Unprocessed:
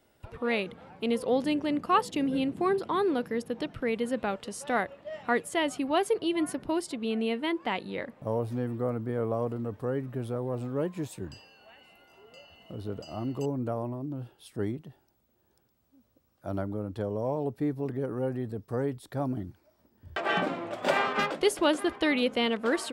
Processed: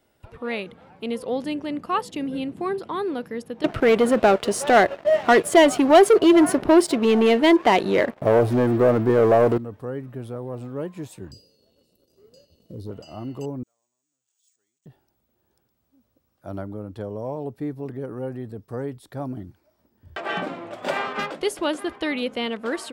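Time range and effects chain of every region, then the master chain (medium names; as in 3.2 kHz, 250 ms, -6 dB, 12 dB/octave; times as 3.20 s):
3.64–9.58 s: waveshaping leveller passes 3 + peaking EQ 1.3 kHz +4.5 dB 2.4 oct + small resonant body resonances 380/640 Hz, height 8 dB, ringing for 25 ms
11.31–12.91 s: Chebyshev band-stop 540–4200 Hz, order 3 + peaking EQ 730 Hz -10 dB 0.37 oct + waveshaping leveller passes 1
13.63–14.86 s: jump at every zero crossing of -45.5 dBFS + band-pass filter 6.9 kHz, Q 16 + careless resampling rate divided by 3×, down filtered, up hold
whole clip: none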